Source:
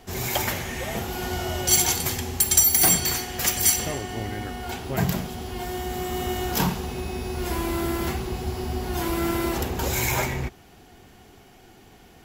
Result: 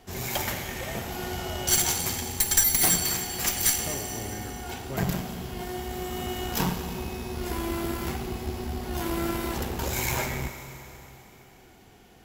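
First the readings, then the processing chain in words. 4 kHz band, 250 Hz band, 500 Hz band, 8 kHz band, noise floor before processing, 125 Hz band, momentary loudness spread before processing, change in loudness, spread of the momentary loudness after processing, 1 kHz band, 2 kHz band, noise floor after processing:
-3.0 dB, -3.5 dB, -4.0 dB, -3.5 dB, -51 dBFS, -4.0 dB, 14 LU, -3.5 dB, 14 LU, -4.0 dB, -3.0 dB, -53 dBFS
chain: Schroeder reverb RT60 3.3 s, combs from 30 ms, DRR 7 dB; Chebyshev shaper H 4 -11 dB, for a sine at -1.5 dBFS; trim -4.5 dB

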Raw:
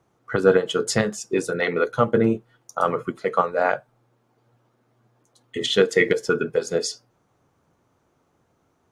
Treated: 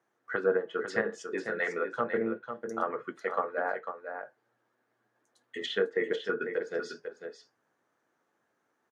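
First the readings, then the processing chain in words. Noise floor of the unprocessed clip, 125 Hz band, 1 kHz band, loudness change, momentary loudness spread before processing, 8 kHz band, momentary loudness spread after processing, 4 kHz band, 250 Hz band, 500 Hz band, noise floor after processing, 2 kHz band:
-67 dBFS, -20.0 dB, -9.5 dB, -10.5 dB, 11 LU, under -20 dB, 12 LU, -13.5 dB, -12.5 dB, -10.0 dB, -78 dBFS, -7.5 dB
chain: high-pass 270 Hz 12 dB/octave; low-pass that closes with the level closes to 1.1 kHz, closed at -16.5 dBFS; peaking EQ 1.7 kHz +11.5 dB 0.42 oct; flange 0.31 Hz, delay 8.4 ms, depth 1.2 ms, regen -67%; on a send: delay 498 ms -8 dB; on the sum: trim -6 dB

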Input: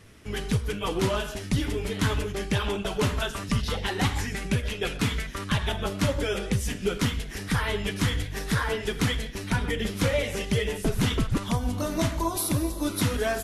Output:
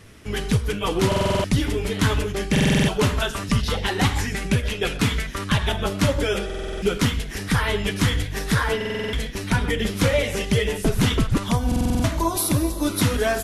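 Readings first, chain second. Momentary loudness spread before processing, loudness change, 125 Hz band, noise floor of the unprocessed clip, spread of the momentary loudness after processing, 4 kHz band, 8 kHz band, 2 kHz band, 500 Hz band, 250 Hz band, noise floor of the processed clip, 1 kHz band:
4 LU, +5.0 dB, +5.0 dB, -37 dBFS, 5 LU, +5.0 dB, +4.5 dB, +5.0 dB, +5.0 dB, +5.5 dB, -31 dBFS, +5.0 dB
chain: buffer glitch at 1.07/2.51/6.45/8.76/11.67 s, samples 2048, times 7; trim +5 dB

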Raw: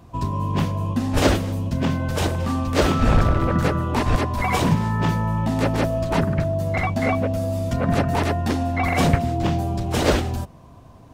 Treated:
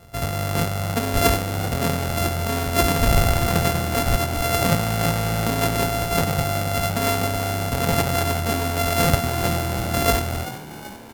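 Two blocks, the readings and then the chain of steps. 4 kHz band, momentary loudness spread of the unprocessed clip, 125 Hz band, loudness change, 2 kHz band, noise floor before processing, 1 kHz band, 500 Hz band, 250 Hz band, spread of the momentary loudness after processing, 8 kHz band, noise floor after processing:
+5.0 dB, 5 LU, -1.5 dB, 0.0 dB, +2.0 dB, -45 dBFS, +1.0 dB, +0.5 dB, -3.5 dB, 5 LU, +8.5 dB, -36 dBFS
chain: sorted samples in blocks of 64 samples; peaking EQ 13 kHz +6.5 dB 0.74 oct; frequency-shifting echo 384 ms, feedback 56%, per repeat +70 Hz, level -14.5 dB; trim -1 dB

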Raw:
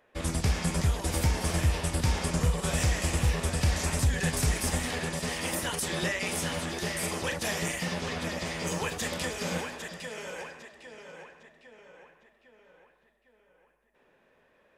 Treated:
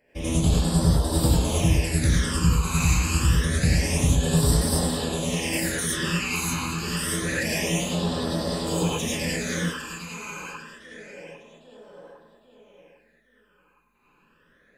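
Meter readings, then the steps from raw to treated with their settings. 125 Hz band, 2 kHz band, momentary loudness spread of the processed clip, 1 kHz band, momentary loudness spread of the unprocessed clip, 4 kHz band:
+6.5 dB, +3.5 dB, 14 LU, +3.0 dB, 11 LU, +5.0 dB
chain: phase shifter stages 12, 0.27 Hz, lowest notch 570–2300 Hz; gated-style reverb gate 130 ms rising, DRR -5.5 dB; trim +1.5 dB

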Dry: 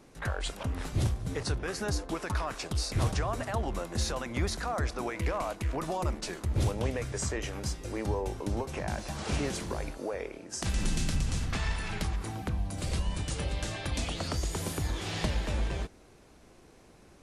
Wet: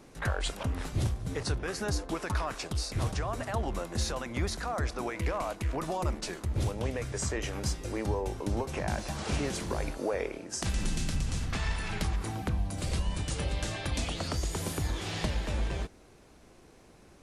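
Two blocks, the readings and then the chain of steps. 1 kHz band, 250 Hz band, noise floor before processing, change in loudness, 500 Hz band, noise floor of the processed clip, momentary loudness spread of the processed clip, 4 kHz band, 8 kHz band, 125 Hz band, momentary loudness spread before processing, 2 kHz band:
0.0 dB, 0.0 dB, -57 dBFS, 0.0 dB, +0.5 dB, -56 dBFS, 2 LU, 0.0 dB, 0.0 dB, -0.5 dB, 5 LU, 0.0 dB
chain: gain riding 0.5 s

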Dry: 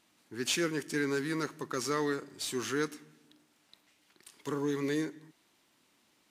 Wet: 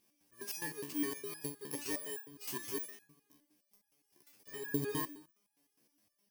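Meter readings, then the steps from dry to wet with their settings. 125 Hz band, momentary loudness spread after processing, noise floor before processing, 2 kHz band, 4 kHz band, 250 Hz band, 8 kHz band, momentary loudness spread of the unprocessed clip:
-6.5 dB, 11 LU, -70 dBFS, -9.5 dB, -10.0 dB, -8.0 dB, -4.5 dB, 8 LU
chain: bit-reversed sample order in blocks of 32 samples; resonator arpeggio 9.7 Hz 71–830 Hz; trim +5 dB

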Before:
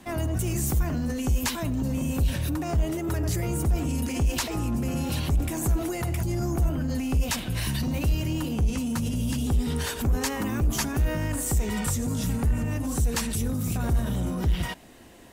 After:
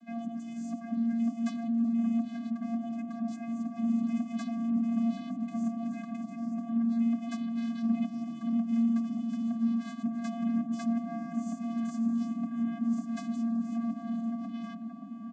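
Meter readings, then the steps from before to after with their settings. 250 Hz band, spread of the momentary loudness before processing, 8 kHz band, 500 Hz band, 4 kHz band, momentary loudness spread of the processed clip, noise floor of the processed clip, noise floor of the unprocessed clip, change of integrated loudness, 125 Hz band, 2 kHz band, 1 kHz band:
+1.0 dB, 2 LU, under -20 dB, -13.0 dB, under -15 dB, 8 LU, -42 dBFS, -35 dBFS, -5.0 dB, -20.0 dB, -15.0 dB, -7.5 dB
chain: comb 3.4 ms, depth 92%; vocoder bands 16, square 231 Hz; on a send: feedback echo behind a low-pass 574 ms, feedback 80%, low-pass 1.1 kHz, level -6 dB; on the sum: trim -3 dB

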